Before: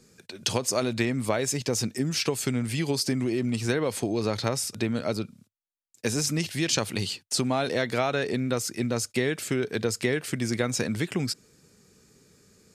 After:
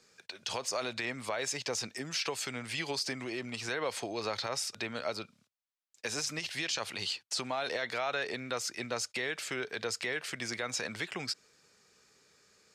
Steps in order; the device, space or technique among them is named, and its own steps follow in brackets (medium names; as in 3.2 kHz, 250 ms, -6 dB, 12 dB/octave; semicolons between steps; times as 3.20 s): DJ mixer with the lows and highs turned down (three-band isolator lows -17 dB, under 560 Hz, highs -13 dB, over 6.4 kHz; peak limiter -23 dBFS, peak gain reduction 10 dB)